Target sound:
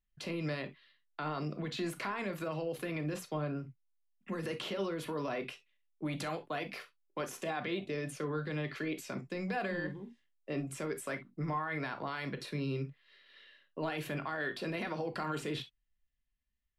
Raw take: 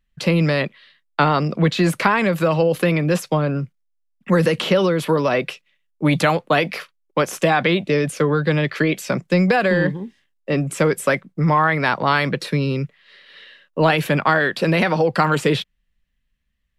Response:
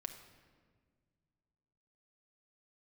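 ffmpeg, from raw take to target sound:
-filter_complex "[0:a]alimiter=limit=-12.5dB:level=0:latency=1:release=53[link_01];[1:a]atrim=start_sample=2205,atrim=end_sample=6174,asetrate=83790,aresample=44100[link_02];[link_01][link_02]afir=irnorm=-1:irlink=0,volume=-6.5dB"

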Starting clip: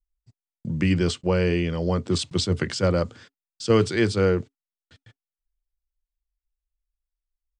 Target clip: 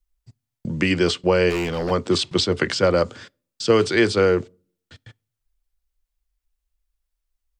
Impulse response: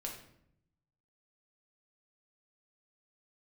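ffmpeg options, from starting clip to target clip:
-filter_complex "[0:a]acrossover=split=290|5300[link_01][link_02][link_03];[link_01]acompressor=threshold=-37dB:ratio=4[link_04];[link_02]acompressor=threshold=-21dB:ratio=4[link_05];[link_03]acompressor=threshold=-46dB:ratio=4[link_06];[link_04][link_05][link_06]amix=inputs=3:normalize=0,asplit=3[link_07][link_08][link_09];[link_07]afade=type=out:start_time=1.49:duration=0.02[link_10];[link_08]asoftclip=type=hard:threshold=-29dB,afade=type=in:start_time=1.49:duration=0.02,afade=type=out:start_time=1.9:duration=0.02[link_11];[link_09]afade=type=in:start_time=1.9:duration=0.02[link_12];[link_10][link_11][link_12]amix=inputs=3:normalize=0,asplit=2[link_13][link_14];[1:a]atrim=start_sample=2205,asetrate=83790,aresample=44100[link_15];[link_14][link_15]afir=irnorm=-1:irlink=0,volume=-18.5dB[link_16];[link_13][link_16]amix=inputs=2:normalize=0,volume=7.5dB"

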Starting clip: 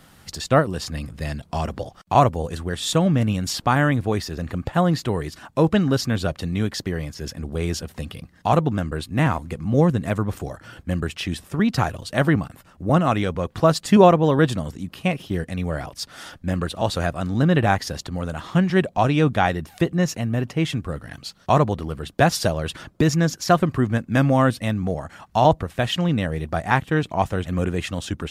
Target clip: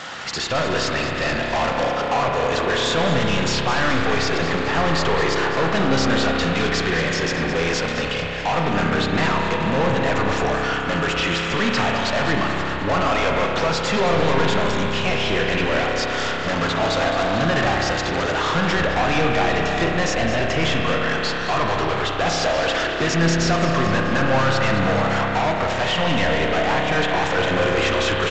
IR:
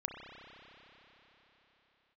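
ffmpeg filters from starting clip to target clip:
-filter_complex "[0:a]highpass=frequency=98:poles=1,equalizer=frequency=250:width_type=o:width=1.6:gain=-5.5,alimiter=limit=-14dB:level=0:latency=1:release=186,asettb=1/sr,asplit=3[link_01][link_02][link_03];[link_01]atrim=end=15.824[link_04];[link_02]atrim=start=15.82:end=18.23,asetpts=PTS-STARTPTS,afade=type=in:duration=0.004:curve=qsin,afade=type=out:start_time=2.406:duration=0.004:curve=qsin,acrusher=bits=6:dc=4:mix=0:aa=0.000001[link_05];[link_03]atrim=start=18.226[link_06];[link_04][link_05]acrossfade=duration=0.004:curve1=hsin:curve2=qsin[link_07];[link_07][link_06]acrossfade=duration=0.004:curve1=qsin:curve2=hsin,asplit=2[link_08][link_09];[link_09]highpass=frequency=720:poles=1,volume=32dB,asoftclip=type=tanh:threshold=-14dB[link_10];[link_08][link_10]amix=inputs=2:normalize=0,lowpass=frequency=3800:poles=1,volume=-6dB,asplit=8[link_11][link_12][link_13][link_14][link_15][link_16][link_17][link_18];[link_12]adelay=214,afreqshift=-110,volume=-11dB[link_19];[link_13]adelay=428,afreqshift=-220,volume=-15.6dB[link_20];[link_14]adelay=642,afreqshift=-330,volume=-20.2dB[link_21];[link_15]adelay=856,afreqshift=-440,volume=-24.7dB[link_22];[link_16]adelay=1070,afreqshift=-550,volume=-29.3dB[link_23];[link_17]adelay=1284,afreqshift=-660,volume=-33.9dB[link_24];[link_18]adelay=1498,afreqshift=-770,volume=-38.5dB[link_25];[link_11][link_19][link_20][link_21][link_22][link_23][link_24][link_25]amix=inputs=8:normalize=0[link_26];[1:a]atrim=start_sample=2205[link_27];[link_26][link_27]afir=irnorm=-1:irlink=0" -ar 16000 -c:a g722

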